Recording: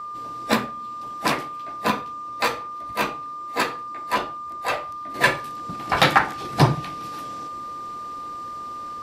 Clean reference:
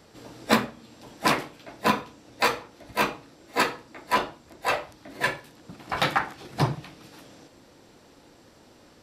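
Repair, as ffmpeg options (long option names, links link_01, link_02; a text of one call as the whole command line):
ffmpeg -i in.wav -af "bandreject=frequency=1200:width=30,asetnsamples=nb_out_samples=441:pad=0,asendcmd='5.14 volume volume -7.5dB',volume=0dB" out.wav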